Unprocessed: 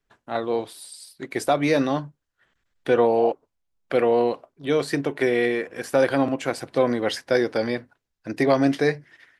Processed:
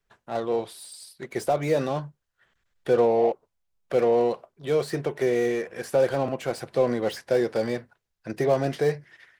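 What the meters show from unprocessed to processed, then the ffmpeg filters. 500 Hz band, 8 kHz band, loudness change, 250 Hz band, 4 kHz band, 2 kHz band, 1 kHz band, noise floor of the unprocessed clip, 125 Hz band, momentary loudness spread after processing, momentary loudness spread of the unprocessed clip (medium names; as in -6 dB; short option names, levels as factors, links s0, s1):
-1.5 dB, -3.0 dB, -2.5 dB, -6.0 dB, -6.0 dB, -7.5 dB, -3.5 dB, -79 dBFS, 0.0 dB, 16 LU, 16 LU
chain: -filter_complex "[0:a]equalizer=f=280:t=o:w=0.24:g=-13.5,acrossover=split=780[s0][s1];[s1]asoftclip=type=tanh:threshold=0.0168[s2];[s0][s2]amix=inputs=2:normalize=0"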